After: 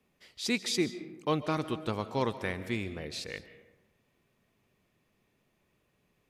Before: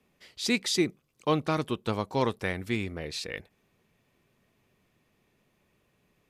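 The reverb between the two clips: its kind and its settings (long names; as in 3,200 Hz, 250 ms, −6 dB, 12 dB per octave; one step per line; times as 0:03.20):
comb and all-pass reverb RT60 1.1 s, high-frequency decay 0.45×, pre-delay 100 ms, DRR 12.5 dB
level −3.5 dB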